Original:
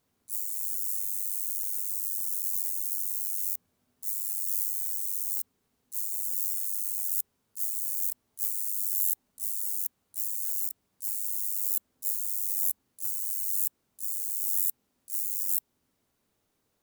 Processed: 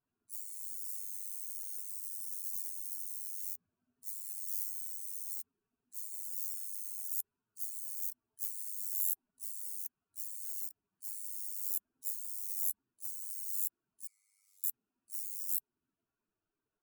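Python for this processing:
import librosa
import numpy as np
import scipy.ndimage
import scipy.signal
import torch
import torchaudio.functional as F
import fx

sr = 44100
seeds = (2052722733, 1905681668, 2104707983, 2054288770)

y = fx.bin_expand(x, sr, power=2.0)
y = fx.double_bandpass(y, sr, hz=1700.0, octaves=0.77, at=(14.07, 14.64))
y = y * librosa.db_to_amplitude(-2.0)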